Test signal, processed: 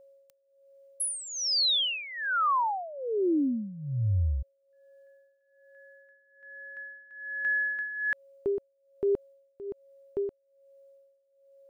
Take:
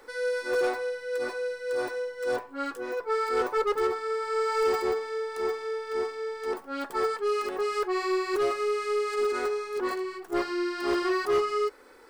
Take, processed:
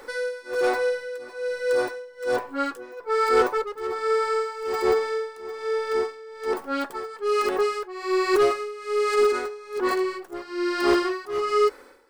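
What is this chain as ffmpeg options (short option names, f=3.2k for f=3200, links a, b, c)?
-af "aeval=exprs='val(0)+0.000891*sin(2*PI*550*n/s)':c=same,tremolo=f=1.2:d=0.86,volume=8dB"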